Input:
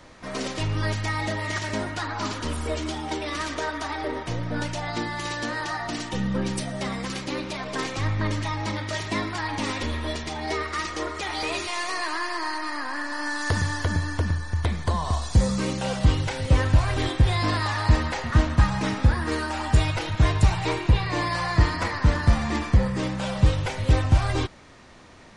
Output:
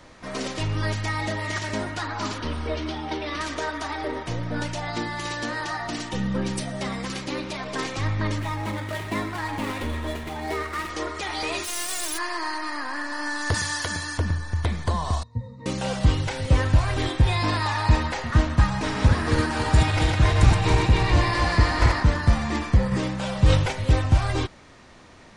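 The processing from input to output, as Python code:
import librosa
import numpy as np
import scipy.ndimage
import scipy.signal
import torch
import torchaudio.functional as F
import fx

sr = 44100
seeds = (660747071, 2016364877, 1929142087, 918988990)

y = fx.savgol(x, sr, points=15, at=(2.38, 3.41))
y = fx.median_filter(y, sr, points=9, at=(8.38, 10.9))
y = fx.envelope_flatten(y, sr, power=0.1, at=(11.63, 12.17), fade=0.02)
y = fx.tilt_eq(y, sr, slope=3.0, at=(13.54, 14.18))
y = fx.octave_resonator(y, sr, note='A#', decay_s=0.22, at=(15.23, 15.66))
y = fx.small_body(y, sr, hz=(900.0, 2500.0, 3700.0), ring_ms=85, db=11, at=(17.21, 18.07))
y = fx.reverse_delay_fb(y, sr, ms=139, feedback_pct=65, wet_db=-2, at=(18.67, 22.03))
y = fx.sustainer(y, sr, db_per_s=55.0, at=(22.91, 23.71), fade=0.02)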